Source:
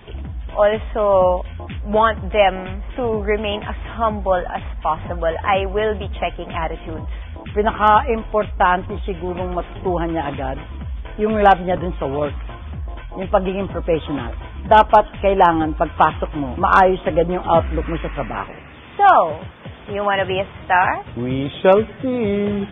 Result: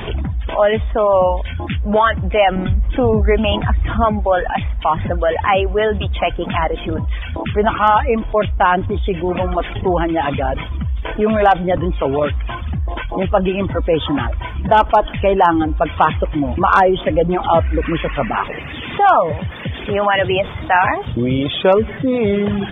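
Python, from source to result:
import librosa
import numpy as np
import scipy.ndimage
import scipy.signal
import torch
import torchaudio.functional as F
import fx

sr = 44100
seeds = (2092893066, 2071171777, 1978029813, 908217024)

y = fx.dereverb_blind(x, sr, rt60_s=1.3)
y = fx.low_shelf(y, sr, hz=270.0, db=11.5, at=(2.56, 4.05))
y = fx.env_flatten(y, sr, amount_pct=50)
y = y * librosa.db_to_amplitude(-1.0)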